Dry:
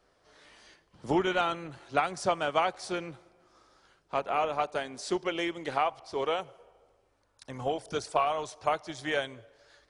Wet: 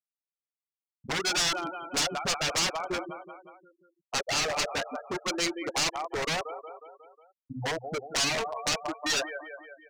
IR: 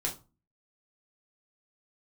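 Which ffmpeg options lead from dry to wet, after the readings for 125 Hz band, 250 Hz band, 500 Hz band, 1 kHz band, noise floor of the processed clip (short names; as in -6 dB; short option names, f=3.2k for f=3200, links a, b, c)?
+1.5 dB, -1.5 dB, -3.5 dB, -3.5 dB, under -85 dBFS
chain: -filter_complex "[0:a]bandreject=f=3.4k:w=13,afftfilt=real='re*gte(hypot(re,im),0.0794)':imag='im*gte(hypot(re,im),0.0794)':win_size=1024:overlap=0.75,acrossover=split=570[a][b];[a]acompressor=threshold=-40dB:ratio=12[c];[c][b]amix=inputs=2:normalize=0,aecho=1:1:181|362|543|724|905:0.178|0.0996|0.0558|0.0312|0.0175,aeval=exprs='0.211*(cos(1*acos(clip(val(0)/0.211,-1,1)))-cos(1*PI/2))+0.0075*(cos(3*acos(clip(val(0)/0.211,-1,1)))-cos(3*PI/2))+0.0841*(cos(5*acos(clip(val(0)/0.211,-1,1)))-cos(5*PI/2))+0.00376*(cos(7*acos(clip(val(0)/0.211,-1,1)))-cos(7*PI/2))+0.00596*(cos(8*acos(clip(val(0)/0.211,-1,1)))-cos(8*PI/2))':c=same,aeval=exprs='0.0501*(abs(mod(val(0)/0.0501+3,4)-2)-1)':c=same,equalizer=f=6.1k:w=0.86:g=12"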